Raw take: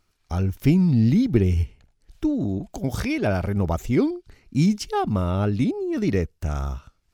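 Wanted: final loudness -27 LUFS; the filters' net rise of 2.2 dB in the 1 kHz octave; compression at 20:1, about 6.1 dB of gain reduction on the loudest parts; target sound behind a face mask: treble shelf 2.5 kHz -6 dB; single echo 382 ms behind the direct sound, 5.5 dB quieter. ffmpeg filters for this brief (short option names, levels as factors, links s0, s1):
-af "equalizer=f=1000:t=o:g=4,acompressor=threshold=0.112:ratio=20,highshelf=f=2500:g=-6,aecho=1:1:382:0.531,volume=0.841"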